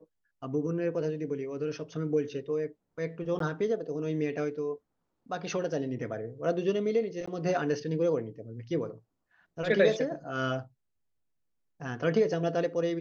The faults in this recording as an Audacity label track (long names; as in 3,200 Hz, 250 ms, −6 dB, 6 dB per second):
3.390000	3.400000	drop-out 13 ms
7.260000	7.280000	drop-out 15 ms